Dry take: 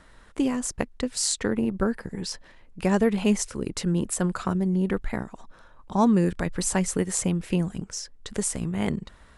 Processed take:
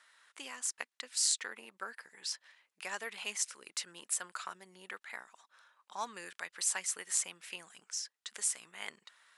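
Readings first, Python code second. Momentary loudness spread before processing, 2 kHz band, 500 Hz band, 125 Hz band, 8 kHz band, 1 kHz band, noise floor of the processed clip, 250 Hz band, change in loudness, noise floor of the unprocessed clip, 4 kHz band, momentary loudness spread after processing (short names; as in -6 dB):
12 LU, -5.5 dB, -24.0 dB, under -40 dB, -4.0 dB, -12.5 dB, under -85 dBFS, -36.5 dB, -10.5 dB, -53 dBFS, -4.0 dB, 15 LU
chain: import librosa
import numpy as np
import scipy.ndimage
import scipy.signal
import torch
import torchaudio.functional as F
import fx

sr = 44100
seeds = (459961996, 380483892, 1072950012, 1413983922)

y = scipy.signal.sosfilt(scipy.signal.butter(2, 1500.0, 'highpass', fs=sr, output='sos'), x)
y = y * librosa.db_to_amplitude(-4.0)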